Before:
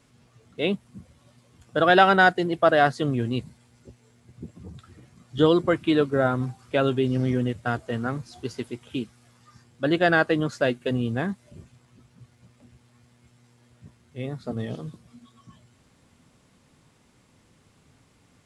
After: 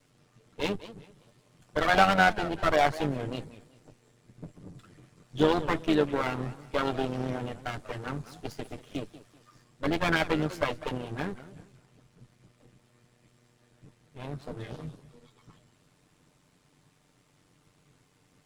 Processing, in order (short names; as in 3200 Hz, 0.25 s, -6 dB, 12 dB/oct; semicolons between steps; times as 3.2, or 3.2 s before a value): minimum comb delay 6.7 ms; AM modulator 93 Hz, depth 35%; warbling echo 0.192 s, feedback 30%, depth 219 cents, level -15.5 dB; gain -1 dB